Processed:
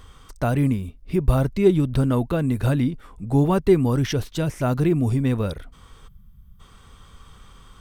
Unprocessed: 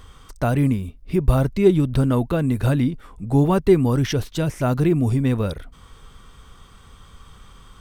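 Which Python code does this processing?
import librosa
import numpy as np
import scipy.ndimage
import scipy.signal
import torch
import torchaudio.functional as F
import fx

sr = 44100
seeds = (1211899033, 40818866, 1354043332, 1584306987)

y = fx.spec_box(x, sr, start_s=6.08, length_s=0.52, low_hz=230.0, high_hz=11000.0, gain_db=-24)
y = y * 10.0 ** (-1.5 / 20.0)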